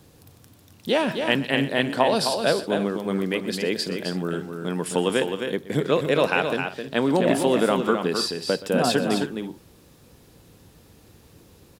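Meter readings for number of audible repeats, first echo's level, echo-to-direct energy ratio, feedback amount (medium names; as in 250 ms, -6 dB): 3, -17.0 dB, -6.0 dB, no regular repeats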